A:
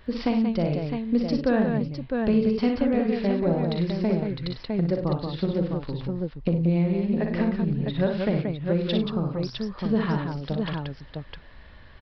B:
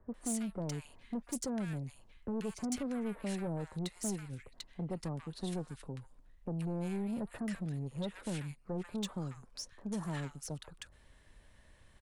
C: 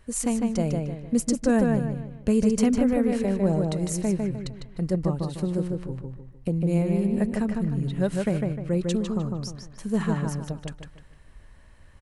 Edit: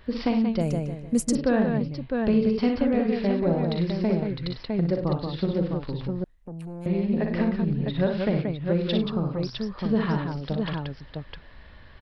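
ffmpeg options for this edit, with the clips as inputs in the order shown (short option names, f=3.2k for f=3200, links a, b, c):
-filter_complex "[0:a]asplit=3[a][b][c];[a]atrim=end=0.612[d];[2:a]atrim=start=0.608:end=1.352[e];[b]atrim=start=1.348:end=6.242[f];[1:a]atrim=start=6.238:end=6.862[g];[c]atrim=start=6.858[h];[d][e]acrossfade=d=0.004:c1=hsin:c2=hsin[i];[i][f]acrossfade=d=0.004:c1=hsin:c2=hsin[j];[j][g]acrossfade=d=0.004:c1=hsin:c2=hsin[k];[k][h]acrossfade=d=0.004:c1=hsin:c2=hsin"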